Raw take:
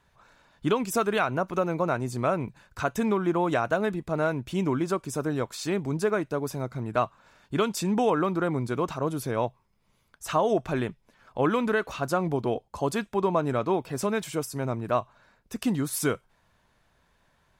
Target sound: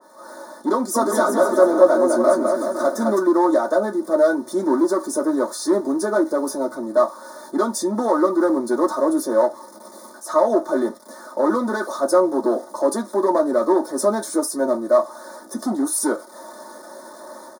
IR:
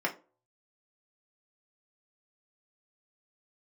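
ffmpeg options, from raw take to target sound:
-filter_complex "[0:a]aeval=exprs='val(0)+0.5*0.01*sgn(val(0))':c=same,highpass=f=73:w=0.5412,highpass=f=73:w=1.3066,equalizer=f=160:w=1.8:g=3,aecho=1:1:3.4:0.65,dynaudnorm=f=140:g=3:m=3.55,volume=3.55,asoftclip=hard,volume=0.282,asuperstop=centerf=2700:order=4:qfactor=0.59,asplit=3[s0][s1][s2];[s0]afade=t=out:st=0.94:d=0.02[s3];[s1]aecho=1:1:210|378|512.4|619.9|705.9:0.631|0.398|0.251|0.158|0.1,afade=t=in:st=0.94:d=0.02,afade=t=out:st=3.18:d=0.02[s4];[s2]afade=t=in:st=3.18:d=0.02[s5];[s3][s4][s5]amix=inputs=3:normalize=0[s6];[1:a]atrim=start_sample=2205,atrim=end_sample=6615,asetrate=79380,aresample=44100[s7];[s6][s7]afir=irnorm=-1:irlink=0,adynamicequalizer=threshold=0.0282:dfrequency=1900:dqfactor=0.7:tfrequency=1900:tqfactor=0.7:attack=5:release=100:ratio=0.375:range=2:mode=boostabove:tftype=highshelf,volume=0.631"

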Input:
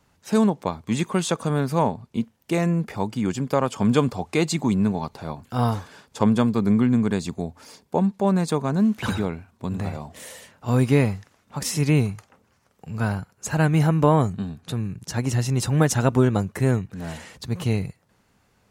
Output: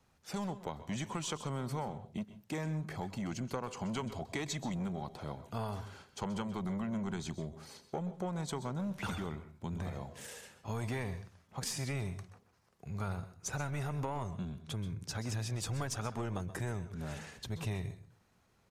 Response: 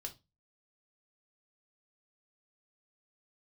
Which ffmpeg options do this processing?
-filter_complex "[0:a]acrossover=split=770|1300[s0][s1][s2];[s0]asoftclip=type=tanh:threshold=0.075[s3];[s3][s1][s2]amix=inputs=3:normalize=0,aeval=exprs='0.299*(cos(1*acos(clip(val(0)/0.299,-1,1)))-cos(1*PI/2))+0.0075*(cos(6*acos(clip(val(0)/0.299,-1,1)))-cos(6*PI/2))':c=same,acompressor=threshold=0.0447:ratio=6,asetrate=40440,aresample=44100,atempo=1.09051,asplit=2[s4][s5];[1:a]atrim=start_sample=2205,adelay=128[s6];[s5][s6]afir=irnorm=-1:irlink=0,volume=0.316[s7];[s4][s7]amix=inputs=2:normalize=0,volume=0.422"

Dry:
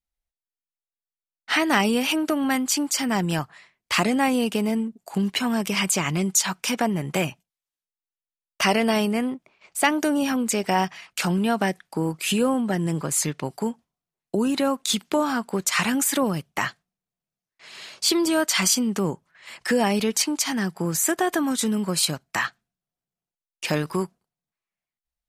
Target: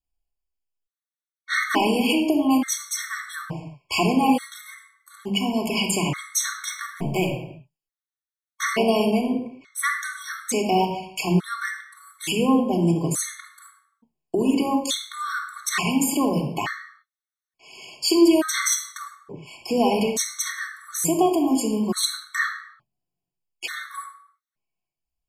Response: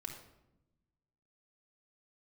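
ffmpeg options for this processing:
-filter_complex "[0:a]asettb=1/sr,asplit=3[s0][s1][s2];[s0]atrim=end=6.704[s3];[s1]atrim=start=6.7:end=7.27,asetpts=PTS-STARTPTS,afade=t=in:d=0.004:c=qsin,afade=t=out:st=0.566:d=0.004:c=qsin,aeval=exprs='sgn(val(0))*max(abs(val(0))-0.0133,0)':c=same[s4];[s2]atrim=start=7.266[s5];[s3][s4]acrossfade=d=0.004:c1=hsin:c2=qsin[s6];[s6][s5]acrossfade=d=0.004:c1=qsin:c2=hsin[s7];[1:a]atrim=start_sample=2205,afade=t=out:st=0.4:d=0.01,atrim=end_sample=18081[s8];[s7][s8]afir=irnorm=-1:irlink=0,afftfilt=real='re*gt(sin(2*PI*0.57*pts/sr)*(1-2*mod(floor(b*sr/1024/1100),2)),0)':imag='im*gt(sin(2*PI*0.57*pts/sr)*(1-2*mod(floor(b*sr/1024/1100),2)),0)':win_size=1024:overlap=0.75,volume=1.68"

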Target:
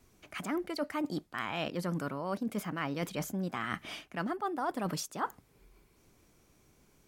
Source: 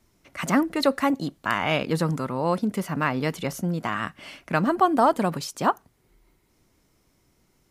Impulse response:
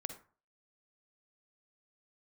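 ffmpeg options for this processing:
-af "areverse,acompressor=threshold=0.0251:ratio=6,areverse,asetrate=48000,aresample=44100"

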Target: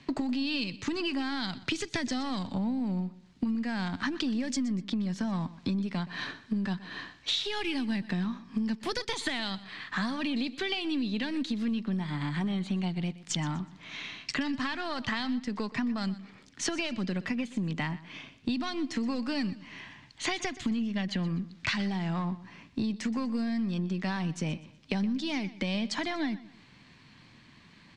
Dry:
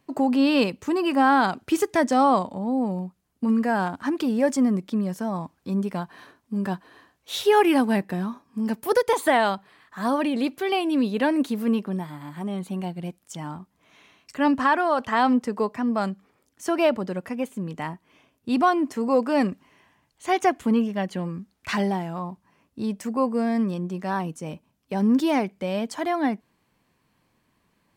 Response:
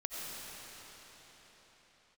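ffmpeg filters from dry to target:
-filter_complex "[0:a]aeval=exprs='if(lt(val(0),0),0.708*val(0),val(0))':c=same,lowpass=f=7500:w=0.5412,lowpass=f=7500:w=1.3066,acrossover=split=200|3000[s0][s1][s2];[s1]acompressor=threshold=0.0282:ratio=6[s3];[s0][s3][s2]amix=inputs=3:normalize=0,equalizer=f=125:t=o:w=1:g=7,equalizer=f=250:t=o:w=1:g=5,equalizer=f=500:t=o:w=1:g=-4,equalizer=f=2000:t=o:w=1:g=7,equalizer=f=4000:t=o:w=1:g=10,acompressor=threshold=0.0141:ratio=8,asplit=2[s4][s5];[s5]aecho=0:1:123|246|369:0.133|0.0453|0.0154[s6];[s4][s6]amix=inputs=2:normalize=0,volume=2.51"

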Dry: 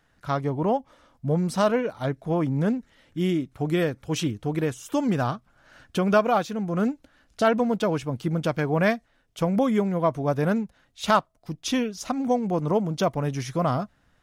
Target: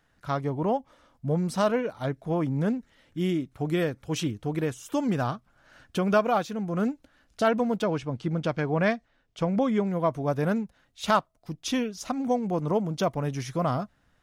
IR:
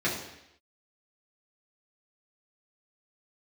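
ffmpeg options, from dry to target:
-filter_complex "[0:a]asettb=1/sr,asplit=3[s0][s1][s2];[s0]atrim=end=7.834[s3];[s1]atrim=start=7.83:end=9.87,asetpts=PTS-STARTPTS,afade=t=in:d=0.004:c=qsin,afade=t=out:st=2.036:d=0.004:c=qsin,lowpass=6100[s4];[s2]atrim=start=9.866[s5];[s3][s4]acrossfade=d=0.004:c1=hsin:c2=qsin[s6];[s6][s5]acrossfade=d=0.004:c1=qsin:c2=hsin,volume=0.75"

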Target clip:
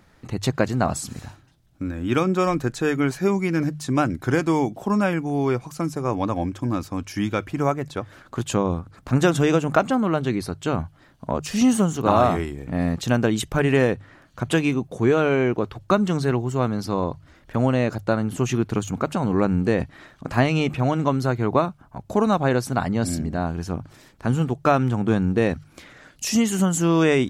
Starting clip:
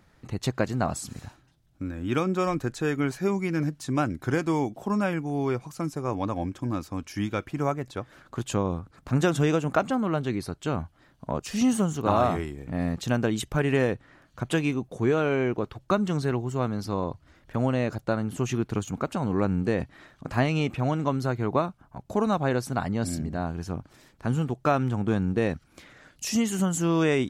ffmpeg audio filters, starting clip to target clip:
-af "bandreject=f=50:t=h:w=6,bandreject=f=100:t=h:w=6,bandreject=f=150:t=h:w=6,volume=1.78"

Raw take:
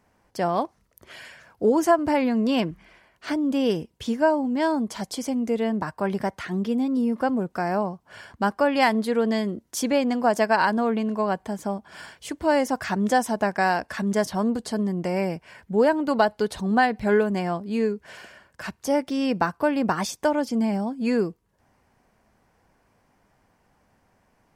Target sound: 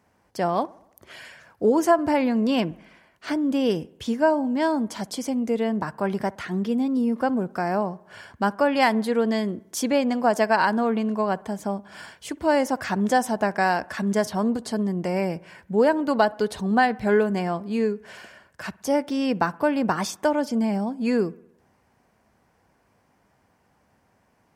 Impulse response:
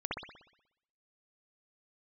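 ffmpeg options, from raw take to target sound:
-filter_complex "[0:a]highpass=59,asplit=2[s0][s1];[1:a]atrim=start_sample=2205,lowpass=2200[s2];[s1][s2]afir=irnorm=-1:irlink=0,volume=0.0596[s3];[s0][s3]amix=inputs=2:normalize=0"

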